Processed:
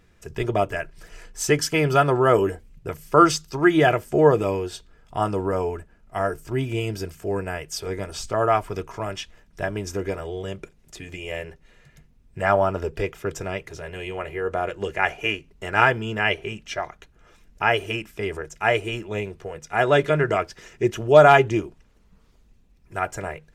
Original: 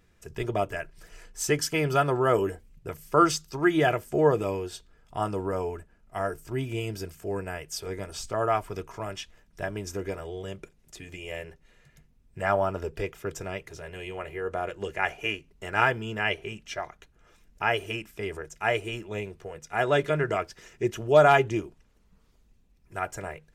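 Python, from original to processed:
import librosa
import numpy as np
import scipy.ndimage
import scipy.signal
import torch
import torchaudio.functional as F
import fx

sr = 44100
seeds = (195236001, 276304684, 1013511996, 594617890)

y = fx.high_shelf(x, sr, hz=7800.0, db=-5.0)
y = F.gain(torch.from_numpy(y), 5.5).numpy()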